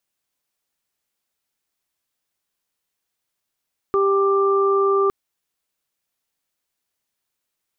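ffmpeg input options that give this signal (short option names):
-f lavfi -i "aevalsrc='0.158*sin(2*PI*394*t)+0.02*sin(2*PI*788*t)+0.1*sin(2*PI*1182*t)':d=1.16:s=44100"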